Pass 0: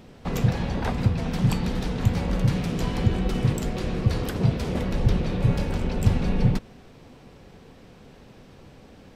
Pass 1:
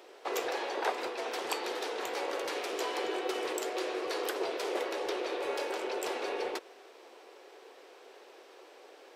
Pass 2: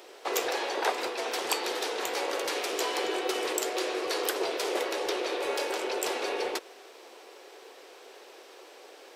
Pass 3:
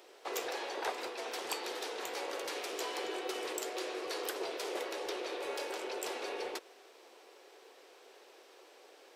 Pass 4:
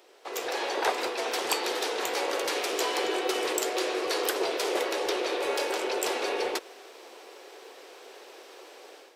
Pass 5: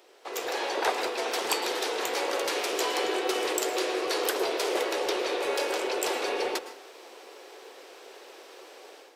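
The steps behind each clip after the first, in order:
elliptic high-pass 360 Hz, stop band 50 dB
high shelf 3600 Hz +7 dB; gain +3 dB
soft clip -14 dBFS, distortion -29 dB; gain -8 dB
AGC gain up to 10 dB
reverb RT60 0.45 s, pre-delay 0.103 s, DRR 12.5 dB

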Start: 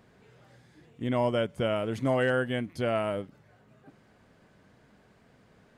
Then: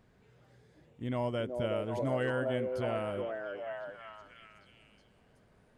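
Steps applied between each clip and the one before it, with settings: low shelf 76 Hz +12 dB; on a send: delay with a stepping band-pass 0.371 s, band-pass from 460 Hz, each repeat 0.7 oct, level 0 dB; on the sum: gain -7.5 dB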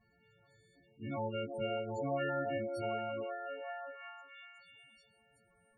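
frequency quantiser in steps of 4 st; loudest bins only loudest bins 16; gain -4.5 dB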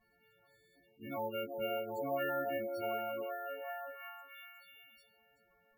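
bell 110 Hz -12.5 dB 1.8 oct; careless resampling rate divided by 3×, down filtered, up hold; gain +1 dB

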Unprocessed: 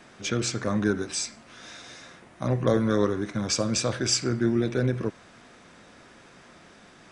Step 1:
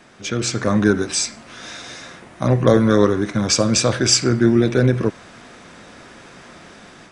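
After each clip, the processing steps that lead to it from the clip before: AGC gain up to 7 dB; gain +2.5 dB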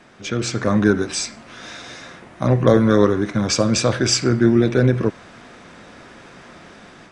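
high shelf 5900 Hz -7.5 dB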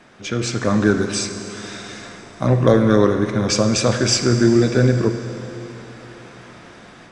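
Schroeder reverb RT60 3.5 s, combs from 33 ms, DRR 8 dB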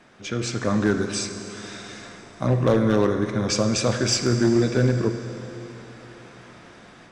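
overloaded stage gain 7 dB; gain -4.5 dB

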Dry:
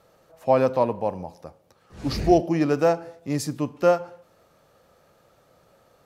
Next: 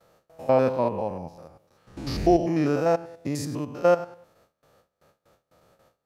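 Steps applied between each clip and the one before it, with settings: stepped spectrum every 0.1 s; gate with hold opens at -50 dBFS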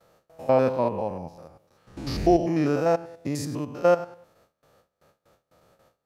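nothing audible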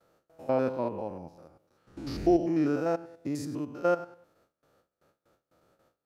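small resonant body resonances 310/1400 Hz, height 7 dB, ringing for 20 ms; gain -8.5 dB

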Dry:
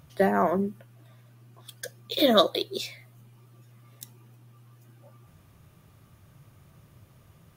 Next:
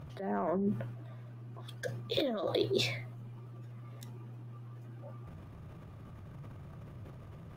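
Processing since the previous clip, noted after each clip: LPF 1100 Hz 6 dB/oct; negative-ratio compressor -32 dBFS, ratio -1; transient shaper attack -3 dB, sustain +7 dB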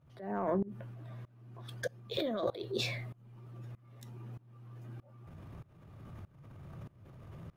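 tremolo saw up 1.6 Hz, depth 95%; gain +2.5 dB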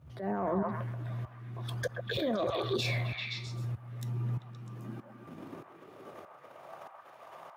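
delay with a stepping band-pass 0.13 s, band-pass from 950 Hz, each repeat 0.7 oct, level -1 dB; limiter -30 dBFS, peak gain reduction 9 dB; high-pass sweep 68 Hz -> 750 Hz, 3.4–6.88; gain +6.5 dB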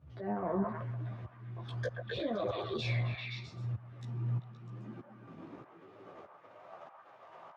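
chorus voices 2, 0.8 Hz, delay 14 ms, depth 4.3 ms; air absorption 120 m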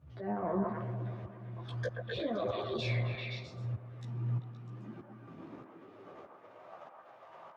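band-limited delay 0.118 s, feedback 77%, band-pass 420 Hz, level -10.5 dB

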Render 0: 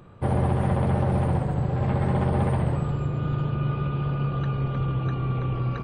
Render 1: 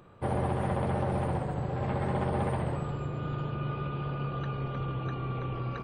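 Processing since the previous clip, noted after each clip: tone controls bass -6 dB, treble 0 dB; gain -3 dB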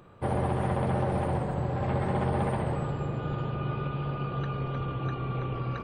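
darkening echo 0.303 s, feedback 81%, low-pass 3100 Hz, level -14 dB; gain +1.5 dB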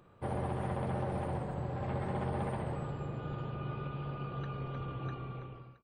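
ending faded out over 0.74 s; gain -7.5 dB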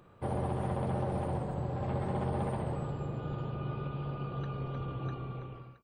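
dynamic EQ 1900 Hz, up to -5 dB, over -56 dBFS, Q 1.1; gain +2.5 dB

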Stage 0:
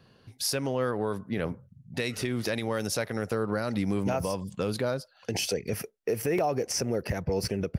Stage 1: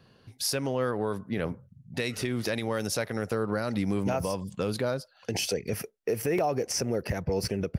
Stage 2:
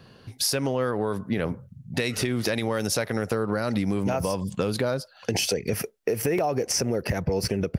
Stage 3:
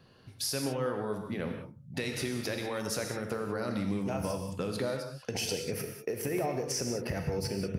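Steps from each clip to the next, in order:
nothing audible
compressor 4:1, threshold -30 dBFS, peak gain reduction 6.5 dB; gain +8 dB
non-linear reverb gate 0.22 s flat, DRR 3.5 dB; gain -9 dB

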